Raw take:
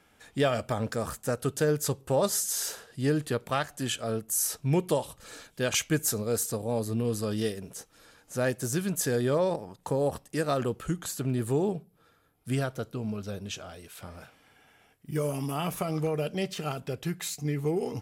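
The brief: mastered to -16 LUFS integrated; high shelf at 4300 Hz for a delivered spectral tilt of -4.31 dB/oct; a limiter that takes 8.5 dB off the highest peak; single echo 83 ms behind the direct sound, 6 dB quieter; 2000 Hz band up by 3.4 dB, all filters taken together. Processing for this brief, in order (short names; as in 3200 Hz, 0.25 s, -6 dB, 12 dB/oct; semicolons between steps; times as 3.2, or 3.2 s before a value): bell 2000 Hz +3.5 dB; high shelf 4300 Hz +5 dB; limiter -18.5 dBFS; echo 83 ms -6 dB; gain +13 dB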